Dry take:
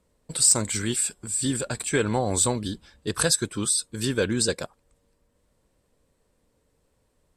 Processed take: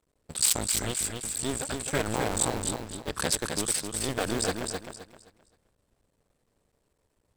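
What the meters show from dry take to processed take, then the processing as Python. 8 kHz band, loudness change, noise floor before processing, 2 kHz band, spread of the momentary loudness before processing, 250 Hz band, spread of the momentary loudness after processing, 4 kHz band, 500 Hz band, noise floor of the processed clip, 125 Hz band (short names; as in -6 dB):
-4.5 dB, -5.0 dB, -70 dBFS, -3.0 dB, 14 LU, -6.0 dB, 10 LU, -3.0 dB, -4.5 dB, -75 dBFS, -6.0 dB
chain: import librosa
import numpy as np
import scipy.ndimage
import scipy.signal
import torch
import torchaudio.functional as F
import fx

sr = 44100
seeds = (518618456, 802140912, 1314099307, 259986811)

y = fx.cycle_switch(x, sr, every=2, mode='muted')
y = fx.echo_feedback(y, sr, ms=261, feedback_pct=28, wet_db=-5.0)
y = y * librosa.db_to_amplitude(-2.5)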